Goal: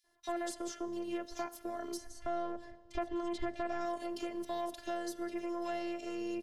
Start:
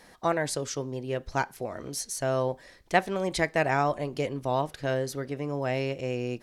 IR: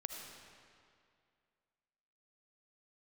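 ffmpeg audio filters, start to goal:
-filter_complex "[0:a]acrossover=split=160|560|2300[link_01][link_02][link_03][link_04];[link_01]acompressor=threshold=-48dB:ratio=4[link_05];[link_02]acompressor=threshold=-34dB:ratio=4[link_06];[link_03]acompressor=threshold=-38dB:ratio=4[link_07];[link_04]acompressor=threshold=-45dB:ratio=4[link_08];[link_05][link_06][link_07][link_08]amix=inputs=4:normalize=0,agate=range=-18dB:threshold=-48dB:ratio=16:detection=peak,asettb=1/sr,asplit=3[link_09][link_10][link_11];[link_09]atrim=end=1.974[link_12];[link_10]atrim=start=1.97:end=3.81,asetpts=PTS-STARTPTS,afade=type=in:duration=0.004:curve=qsin,afade=type=out:start_time=1.836:duration=0.004:curve=qsin,aemphasis=mode=reproduction:type=bsi[link_13];[link_11]atrim=start=3.806[link_14];[link_12][link_13]acrossfade=duration=0.004:curve1=hsin:curve2=qsin[link_15];[link_15][link_14]acrossfade=duration=0.004:curve1=qsin:curve2=hsin,asplit=2[link_16][link_17];[1:a]atrim=start_sample=2205,highshelf=frequency=9100:gain=11[link_18];[link_17][link_18]afir=irnorm=-1:irlink=0,volume=-13.5dB[link_19];[link_16][link_19]amix=inputs=2:normalize=0,asoftclip=type=tanh:threshold=-26dB,afftfilt=real='hypot(re,im)*cos(PI*b)':imag='0':win_size=512:overlap=0.75,acrossover=split=2500[link_20][link_21];[link_20]adelay=40[link_22];[link_22][link_21]amix=inputs=2:normalize=0,volume=1dB"

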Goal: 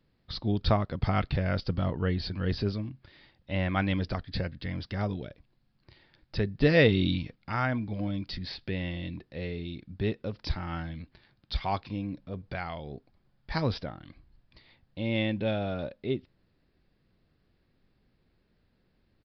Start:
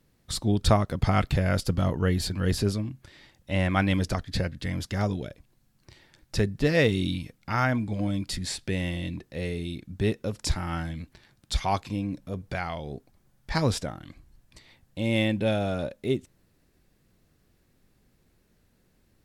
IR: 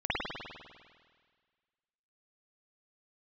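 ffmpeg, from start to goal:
-filter_complex "[0:a]asplit=3[link_01][link_02][link_03];[link_01]afade=type=out:start_time=6.6:duration=0.02[link_04];[link_02]acontrast=32,afade=type=in:start_time=6.6:duration=0.02,afade=type=out:start_time=7.34:duration=0.02[link_05];[link_03]afade=type=in:start_time=7.34:duration=0.02[link_06];[link_04][link_05][link_06]amix=inputs=3:normalize=0,aresample=11025,aresample=44100,volume=-4dB"

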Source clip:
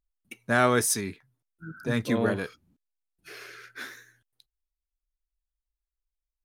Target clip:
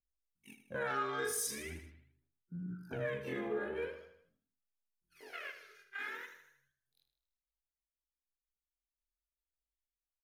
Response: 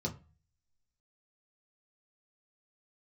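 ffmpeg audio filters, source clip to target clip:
-filter_complex "[0:a]afftfilt=real='re':imag='-im':win_size=2048:overlap=0.75,atempo=0.63,afwtdn=0.00501,equalizer=frequency=14000:width=3.4:gain=6,asplit=2[link_01][link_02];[link_02]adelay=116,lowpass=frequency=870:poles=1,volume=-17dB,asplit=2[link_03][link_04];[link_04]adelay=116,lowpass=frequency=870:poles=1,volume=0.25[link_05];[link_03][link_05]amix=inputs=2:normalize=0[link_06];[link_01][link_06]amix=inputs=2:normalize=0,aphaser=in_gain=1:out_gain=1:delay=2.5:decay=0.75:speed=0.42:type=sinusoidal,acompressor=threshold=-44dB:ratio=3,lowshelf=frequency=97:gain=-8.5,asplit=2[link_07][link_08];[link_08]aecho=0:1:78|156|234|312|390:0.299|0.149|0.0746|0.0373|0.0187[link_09];[link_07][link_09]amix=inputs=2:normalize=0,volume=4dB"

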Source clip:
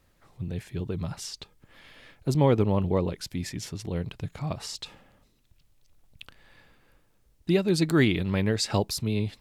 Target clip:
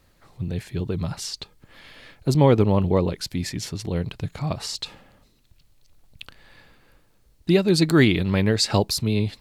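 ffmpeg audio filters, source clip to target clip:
ffmpeg -i in.wav -af "equalizer=frequency=4300:width=6.2:gain=5,volume=5dB" out.wav

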